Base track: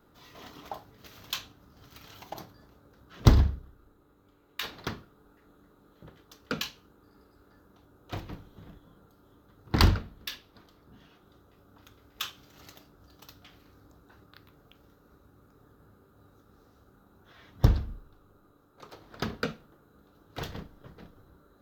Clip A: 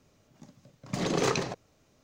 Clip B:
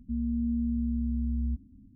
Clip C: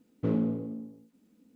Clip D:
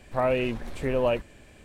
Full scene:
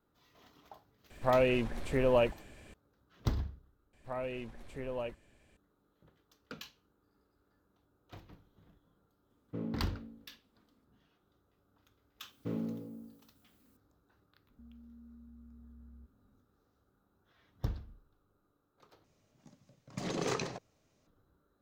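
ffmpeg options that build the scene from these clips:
-filter_complex "[4:a]asplit=2[a][b];[3:a]asplit=2[c][d];[0:a]volume=-14.5dB[e];[d]aemphasis=mode=production:type=75fm[f];[2:a]alimiter=level_in=9.5dB:limit=-24dB:level=0:latency=1:release=71,volume=-9.5dB[g];[e]asplit=3[h][i][j];[h]atrim=end=3.934[k];[b]atrim=end=1.64,asetpts=PTS-STARTPTS,volume=-14dB[l];[i]atrim=start=5.566:end=19.044[m];[1:a]atrim=end=2.03,asetpts=PTS-STARTPTS,volume=-7.5dB[n];[j]atrim=start=21.066[o];[a]atrim=end=1.64,asetpts=PTS-STARTPTS,volume=-2.5dB,afade=t=in:d=0.004:c=hsin,afade=t=out:st=1.636:d=0.004:c=hsin,adelay=1100[p];[c]atrim=end=1.55,asetpts=PTS-STARTPTS,volume=-11.5dB,afade=t=in:d=0.004:c=hsin,afade=t=out:st=1.546:d=0.004:c=hsin,adelay=410130S[q];[f]atrim=end=1.55,asetpts=PTS-STARTPTS,volume=-8.5dB,afade=t=in:d=0.004:c=hsin,afade=t=out:st=1.546:d=0.004:c=hsin,adelay=12220[r];[g]atrim=end=1.95,asetpts=PTS-STARTPTS,volume=-16dB,afade=t=in:d=0.004:c=hsin,afade=t=out:st=1.946:d=0.004:c=hsin,adelay=14500[s];[k][l]acrossfade=d=0.004:c1=hsin:c2=hsin[t];[t][m]acrossfade=d=0.004:c1=hsin:c2=hsin[u];[u][n]acrossfade=d=0.004:c1=hsin:c2=hsin[v];[v][o]acrossfade=d=0.004:c1=hsin:c2=hsin[w];[w][p][q][r][s]amix=inputs=5:normalize=0"

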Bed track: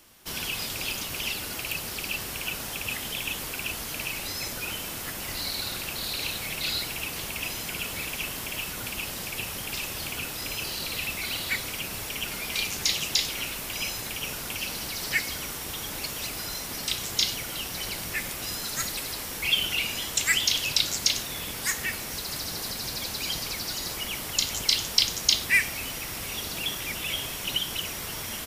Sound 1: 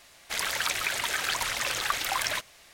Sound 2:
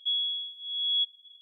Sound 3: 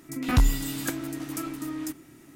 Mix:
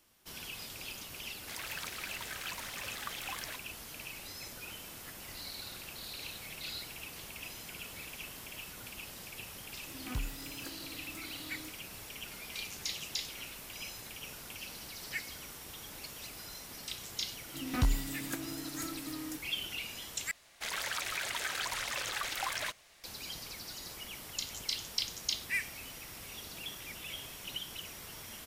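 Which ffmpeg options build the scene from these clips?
-filter_complex "[1:a]asplit=2[a][b];[3:a]asplit=2[c][d];[0:a]volume=-12.5dB[e];[b]alimiter=limit=-17.5dB:level=0:latency=1:release=14[f];[e]asplit=2[g][h];[g]atrim=end=20.314[i];[f]atrim=end=2.73,asetpts=PTS-STARTPTS,volume=-6.5dB[j];[h]atrim=start=23.036[k];[a]atrim=end=2.73,asetpts=PTS-STARTPTS,volume=-14dB,afade=t=in:d=0.004:c=hsin,afade=t=out:st=2.726:d=0.004:c=hsin,adelay=1170[l];[c]atrim=end=2.35,asetpts=PTS-STARTPTS,volume=-17.5dB,afade=t=in:d=0.004:c=hsin,afade=t=out:st=2.346:d=0.004:c=hsin,adelay=431298S[m];[d]atrim=end=2.35,asetpts=PTS-STARTPTS,volume=-8.5dB,afade=t=in:d=0.004:c=hsin,afade=t=out:st=2.346:d=0.004:c=hsin,adelay=17450[n];[i][j]acrossfade=d=0.004:c1=hsin:c2=hsin[o];[o][k]acrossfade=d=0.004:c1=hsin:c2=hsin[p];[p][l][m][n]amix=inputs=4:normalize=0"

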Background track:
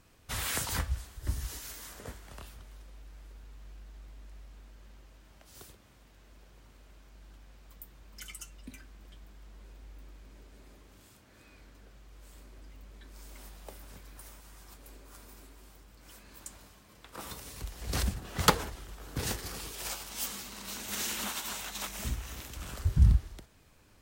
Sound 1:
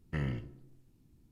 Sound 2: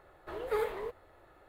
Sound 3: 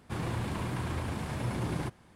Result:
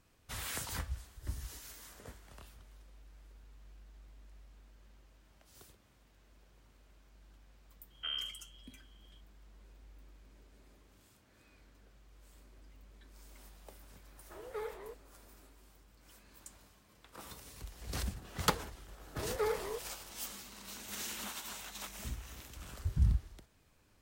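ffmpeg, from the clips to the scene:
-filter_complex "[2:a]asplit=2[a][b];[0:a]volume=-7dB[c];[1:a]lowpass=f=2.8k:t=q:w=0.5098,lowpass=f=2.8k:t=q:w=0.6013,lowpass=f=2.8k:t=q:w=0.9,lowpass=f=2.8k:t=q:w=2.563,afreqshift=-3300,atrim=end=1.31,asetpts=PTS-STARTPTS,volume=-5.5dB,afade=t=in:d=0.004:c=hsin,afade=t=out:st=1.306:d=0.004:c=hsin,adelay=7900[d];[a]atrim=end=1.48,asetpts=PTS-STARTPTS,volume=-9.5dB,afade=t=in:d=0.004:c=hsin,afade=t=out:st=1.476:d=0.004:c=hsin,adelay=14030[e];[b]atrim=end=1.48,asetpts=PTS-STARTPTS,volume=-2dB,afade=t=in:d=0.004:c=hsin,afade=t=out:st=1.476:d=0.004:c=hsin,adelay=18880[f];[c][d][e][f]amix=inputs=4:normalize=0"

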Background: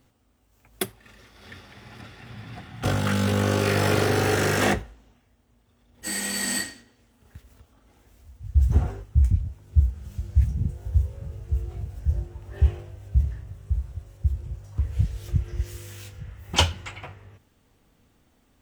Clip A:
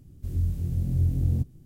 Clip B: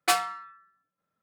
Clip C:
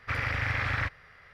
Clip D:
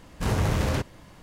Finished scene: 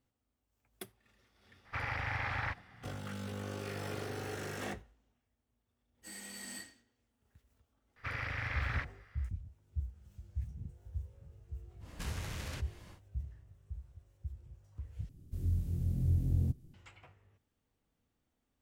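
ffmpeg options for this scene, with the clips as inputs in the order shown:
-filter_complex "[3:a]asplit=2[a][b];[0:a]volume=-19dB[c];[a]equalizer=f=840:w=3.3:g=11[d];[4:a]acrossover=split=140|1500[e][f][g];[e]acompressor=threshold=-40dB:ratio=4[h];[f]acompressor=threshold=-49dB:ratio=4[i];[g]acompressor=threshold=-43dB:ratio=4[j];[h][i][j]amix=inputs=3:normalize=0[k];[c]asplit=2[l][m];[l]atrim=end=15.094[n];[1:a]atrim=end=1.65,asetpts=PTS-STARTPTS,volume=-6.5dB[o];[m]atrim=start=16.736[p];[d]atrim=end=1.33,asetpts=PTS-STARTPTS,volume=-8dB,afade=t=in:d=0.004:c=hsin,afade=t=out:st=1.326:d=0.004:c=hsin,adelay=1650[q];[b]atrim=end=1.33,asetpts=PTS-STARTPTS,volume=-8.5dB,afade=t=in:d=0.004:c=hsin,afade=t=out:st=1.326:d=0.004:c=hsin,adelay=7960[r];[k]atrim=end=1.22,asetpts=PTS-STARTPTS,volume=-3.5dB,afade=t=in:d=0.1,afade=t=out:st=1.12:d=0.1,adelay=11790[s];[n][o]acrossfade=d=0.004:c1=hsin:c2=hsin[t];[t][p]acrossfade=d=0.004:c1=hsin:c2=hsin[u];[u][q][r][s]amix=inputs=4:normalize=0"

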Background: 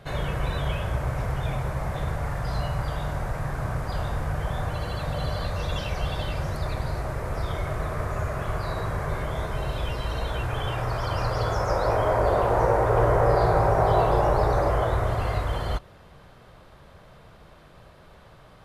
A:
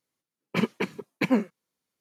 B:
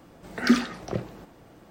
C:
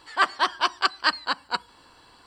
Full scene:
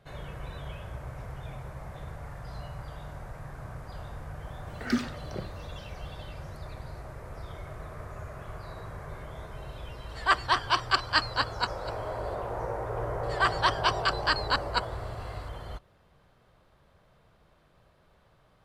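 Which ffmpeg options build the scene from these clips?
-filter_complex "[3:a]asplit=2[a][b];[0:a]volume=-12.5dB[c];[a]aecho=1:1:249:0.211[d];[b]alimiter=limit=-12.5dB:level=0:latency=1:release=20[e];[2:a]atrim=end=1.7,asetpts=PTS-STARTPTS,volume=-8dB,afade=t=in:d=0.004:c=hsin,afade=t=out:st=1.696:d=0.004:c=hsin,adelay=4430[f];[d]atrim=end=2.26,asetpts=PTS-STARTPTS,volume=-2.5dB,afade=t=in:d=0.004:c=hsin,afade=t=out:st=2.256:d=0.004:c=hsin,adelay=10090[g];[e]atrim=end=2.26,asetpts=PTS-STARTPTS,afade=t=in:d=0.004:c=hsin,afade=t=out:st=2.256:d=0.004:c=hsin,adelay=13230[h];[c][f][g][h]amix=inputs=4:normalize=0"

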